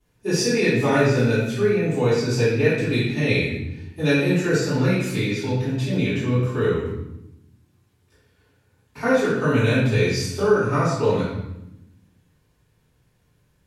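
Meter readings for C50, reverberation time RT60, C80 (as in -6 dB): 0.5 dB, 0.85 s, 3.0 dB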